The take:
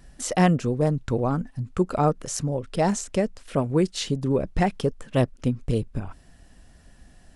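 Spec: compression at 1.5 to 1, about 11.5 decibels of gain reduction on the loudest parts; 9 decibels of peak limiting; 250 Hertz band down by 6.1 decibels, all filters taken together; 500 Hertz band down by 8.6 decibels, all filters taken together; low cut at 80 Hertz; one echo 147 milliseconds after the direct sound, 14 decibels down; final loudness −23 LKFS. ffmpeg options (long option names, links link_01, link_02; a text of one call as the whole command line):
ffmpeg -i in.wav -af "highpass=80,equalizer=frequency=250:width_type=o:gain=-7,equalizer=frequency=500:width_type=o:gain=-9,acompressor=threshold=-53dB:ratio=1.5,alimiter=level_in=5.5dB:limit=-24dB:level=0:latency=1,volume=-5.5dB,aecho=1:1:147:0.2,volume=18.5dB" out.wav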